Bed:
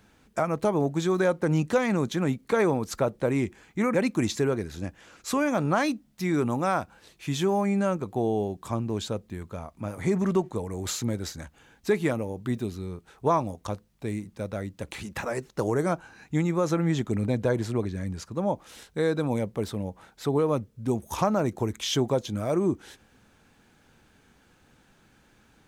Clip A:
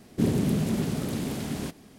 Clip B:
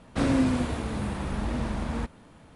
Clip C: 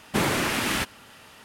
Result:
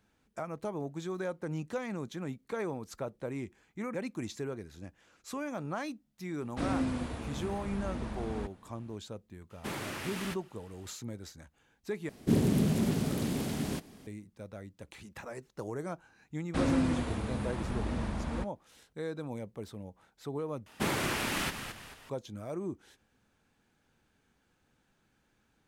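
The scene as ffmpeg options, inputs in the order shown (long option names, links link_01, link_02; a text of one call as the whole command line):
ffmpeg -i bed.wav -i cue0.wav -i cue1.wav -i cue2.wav -filter_complex "[2:a]asplit=2[link_01][link_02];[3:a]asplit=2[link_03][link_04];[0:a]volume=-12.5dB[link_05];[link_02]agate=range=-33dB:threshold=-40dB:ratio=3:release=100:detection=peak[link_06];[link_04]asplit=5[link_07][link_08][link_09][link_10][link_11];[link_08]adelay=219,afreqshift=-68,volume=-8.5dB[link_12];[link_09]adelay=438,afreqshift=-136,volume=-17.1dB[link_13];[link_10]adelay=657,afreqshift=-204,volume=-25.8dB[link_14];[link_11]adelay=876,afreqshift=-272,volume=-34.4dB[link_15];[link_07][link_12][link_13][link_14][link_15]amix=inputs=5:normalize=0[link_16];[link_05]asplit=3[link_17][link_18][link_19];[link_17]atrim=end=12.094[link_20];[1:a]atrim=end=1.98,asetpts=PTS-STARTPTS,volume=-2dB[link_21];[link_18]atrim=start=14.066:end=20.664[link_22];[link_16]atrim=end=1.44,asetpts=PTS-STARTPTS,volume=-7.5dB[link_23];[link_19]atrim=start=22.096[link_24];[link_01]atrim=end=2.55,asetpts=PTS-STARTPTS,volume=-8.5dB,afade=type=in:duration=0.004:curve=hsin,afade=type=out:start_time=2.546:duration=0.004:curve=hsin,adelay=6410[link_25];[link_03]atrim=end=1.44,asetpts=PTS-STARTPTS,volume=-14.5dB,afade=type=in:duration=0.004:curve=hsin,afade=type=out:start_time=1.436:duration=0.004:curve=hsin,adelay=9500[link_26];[link_06]atrim=end=2.55,asetpts=PTS-STARTPTS,volume=-5dB,afade=type=in:duration=0.004:curve=hsin,afade=type=out:start_time=2.546:duration=0.004:curve=hsin,adelay=16380[link_27];[link_20][link_21]acrossfade=duration=0.004:curve1=hsin:curve2=hsin[link_28];[link_28][link_22]acrossfade=duration=0.004:curve1=hsin:curve2=hsin[link_29];[link_29][link_23]acrossfade=duration=0.004:curve1=hsin:curve2=hsin[link_30];[link_30][link_24]acrossfade=duration=0.004:curve1=hsin:curve2=hsin[link_31];[link_31][link_25][link_26][link_27]amix=inputs=4:normalize=0" out.wav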